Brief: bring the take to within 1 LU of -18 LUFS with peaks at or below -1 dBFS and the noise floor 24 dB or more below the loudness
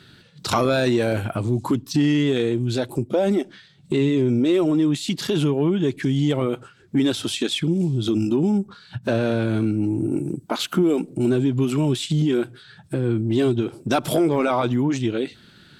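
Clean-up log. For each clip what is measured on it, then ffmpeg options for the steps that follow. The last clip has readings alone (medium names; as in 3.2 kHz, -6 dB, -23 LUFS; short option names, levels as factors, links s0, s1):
loudness -22.0 LUFS; peak level -9.0 dBFS; loudness target -18.0 LUFS
-> -af "volume=1.58"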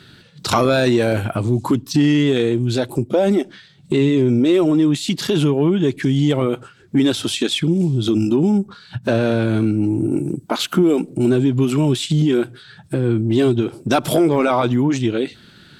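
loudness -18.0 LUFS; peak level -5.0 dBFS; noise floor -47 dBFS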